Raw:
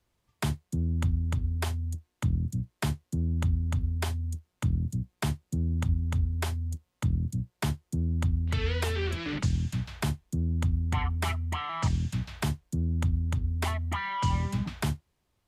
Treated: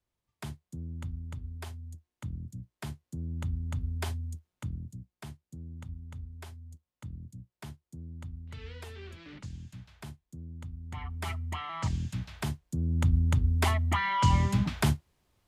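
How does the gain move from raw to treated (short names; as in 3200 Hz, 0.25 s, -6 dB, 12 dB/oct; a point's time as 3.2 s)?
2.71 s -11 dB
4.12 s -3 dB
5.16 s -15 dB
10.77 s -15 dB
11.37 s -4 dB
12.65 s -4 dB
13.18 s +3.5 dB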